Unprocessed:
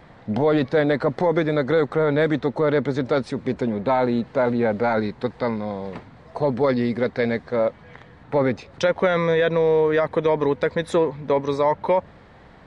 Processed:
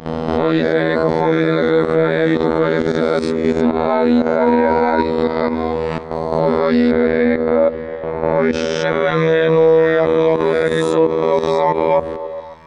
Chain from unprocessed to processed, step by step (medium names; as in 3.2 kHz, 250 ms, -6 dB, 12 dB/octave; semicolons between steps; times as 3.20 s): reverse spectral sustain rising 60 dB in 1.03 s; gate -38 dBFS, range -11 dB; robot voice 80.6 Hz; 4.40–5.04 s: whistle 950 Hz -25 dBFS; level held to a coarse grid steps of 12 dB; 6.91–8.53 s: distance through air 250 m; repeats whose band climbs or falls 135 ms, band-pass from 200 Hz, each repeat 0.7 oct, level -11.5 dB; loudness maximiser +16 dB; trim -1 dB